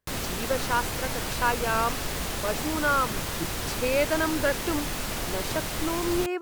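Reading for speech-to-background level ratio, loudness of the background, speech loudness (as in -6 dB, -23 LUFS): 1.5 dB, -30.5 LUFS, -29.0 LUFS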